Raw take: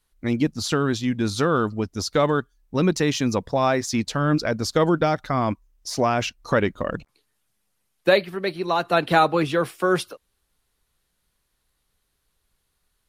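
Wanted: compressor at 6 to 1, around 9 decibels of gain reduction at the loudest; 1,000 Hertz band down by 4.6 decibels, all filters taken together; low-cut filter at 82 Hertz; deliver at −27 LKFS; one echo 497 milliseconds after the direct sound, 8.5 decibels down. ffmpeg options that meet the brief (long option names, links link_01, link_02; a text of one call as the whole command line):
ffmpeg -i in.wav -af "highpass=82,equalizer=frequency=1000:width_type=o:gain=-6.5,acompressor=threshold=-24dB:ratio=6,aecho=1:1:497:0.376,volume=2dB" out.wav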